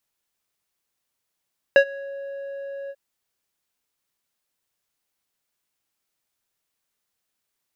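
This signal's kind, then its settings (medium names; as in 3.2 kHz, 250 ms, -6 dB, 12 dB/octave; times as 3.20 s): synth note square C#5 12 dB/octave, low-pass 1.1 kHz, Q 1.8, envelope 1 oct, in 0.35 s, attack 1.2 ms, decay 0.08 s, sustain -24 dB, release 0.05 s, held 1.14 s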